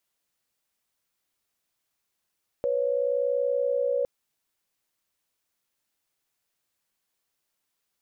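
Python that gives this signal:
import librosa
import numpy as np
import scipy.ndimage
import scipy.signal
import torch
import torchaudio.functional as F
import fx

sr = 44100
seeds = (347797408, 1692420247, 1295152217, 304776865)

y = fx.chord(sr, length_s=1.41, notes=(71, 73), wave='sine', level_db=-25.5)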